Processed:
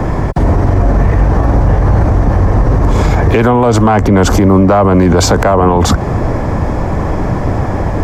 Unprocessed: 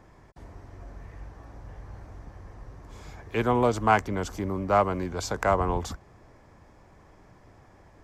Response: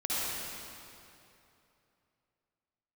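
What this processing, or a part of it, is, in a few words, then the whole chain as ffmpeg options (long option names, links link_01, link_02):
mastering chain: -filter_complex "[0:a]equalizer=frequency=380:width_type=o:width=0.35:gain=-2.5,acrossover=split=110|670[link_01][link_02][link_03];[link_01]acompressor=threshold=-45dB:ratio=4[link_04];[link_02]acompressor=threshold=-33dB:ratio=4[link_05];[link_03]acompressor=threshold=-30dB:ratio=4[link_06];[link_04][link_05][link_06]amix=inputs=3:normalize=0,acompressor=threshold=-38dB:ratio=2,asoftclip=type=tanh:threshold=-27dB,tiltshelf=frequency=1300:gain=6.5,alimiter=level_in=36dB:limit=-1dB:release=50:level=0:latency=1,volume=-1dB"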